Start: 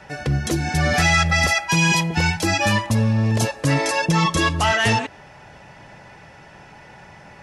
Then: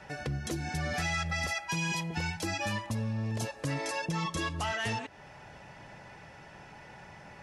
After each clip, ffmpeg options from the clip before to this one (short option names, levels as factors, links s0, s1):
-af "acompressor=threshold=0.0282:ratio=2,volume=0.501"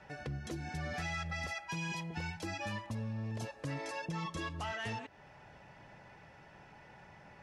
-af "highshelf=f=6300:g=-9.5,volume=0.501"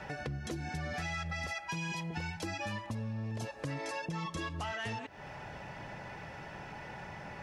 -af "acompressor=threshold=0.00251:ratio=2.5,volume=3.76"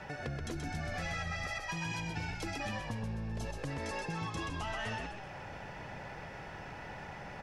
-filter_complex "[0:a]asplit=7[s0][s1][s2][s3][s4][s5][s6];[s1]adelay=128,afreqshift=-55,volume=0.596[s7];[s2]adelay=256,afreqshift=-110,volume=0.279[s8];[s3]adelay=384,afreqshift=-165,volume=0.132[s9];[s4]adelay=512,afreqshift=-220,volume=0.0617[s10];[s5]adelay=640,afreqshift=-275,volume=0.0292[s11];[s6]adelay=768,afreqshift=-330,volume=0.0136[s12];[s0][s7][s8][s9][s10][s11][s12]amix=inputs=7:normalize=0,volume=0.841"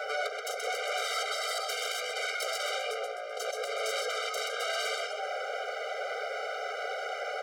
-af "aeval=exprs='0.0562*sin(PI/2*4.47*val(0)/0.0562)':c=same,afftfilt=real='re*eq(mod(floor(b*sr/1024/400),2),1)':imag='im*eq(mod(floor(b*sr/1024/400),2),1)':win_size=1024:overlap=0.75"